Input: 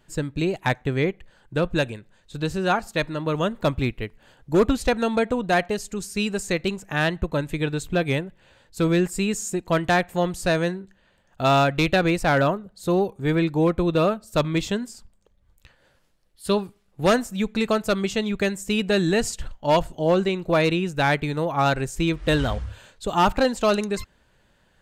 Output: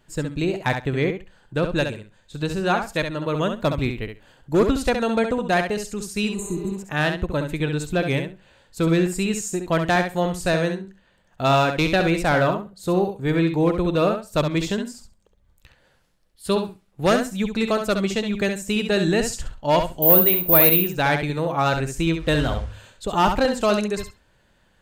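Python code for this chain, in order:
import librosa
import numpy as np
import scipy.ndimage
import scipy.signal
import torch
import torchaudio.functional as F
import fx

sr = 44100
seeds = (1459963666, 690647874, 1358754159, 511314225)

y = fx.spec_repair(x, sr, seeds[0], start_s=6.31, length_s=0.39, low_hz=380.0, high_hz=6200.0, source='after')
y = fx.resample_bad(y, sr, factor=3, down='filtered', up='zero_stuff', at=(20.02, 20.81))
y = fx.echo_feedback(y, sr, ms=67, feedback_pct=15, wet_db=-7.0)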